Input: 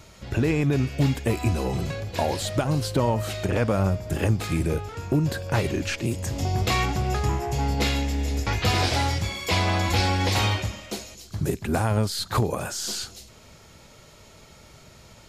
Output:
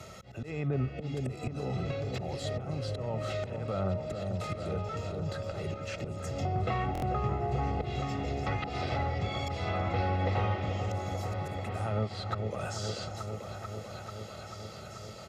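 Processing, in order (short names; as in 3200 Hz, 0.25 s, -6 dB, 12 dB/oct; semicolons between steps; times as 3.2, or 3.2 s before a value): HPF 99 Hz 12 dB/oct; notch 1400 Hz, Q 9; small resonant body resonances 360/1300 Hz, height 9 dB, ringing for 25 ms; auto swell 0.384 s; treble ducked by the level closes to 1600 Hz, closed at -21 dBFS; comb 1.5 ms, depth 67%; repeats that get brighter 0.439 s, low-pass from 750 Hz, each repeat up 1 oct, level -6 dB; stuck buffer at 6.93, samples 1024, times 3; three-band squash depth 40%; gain -7 dB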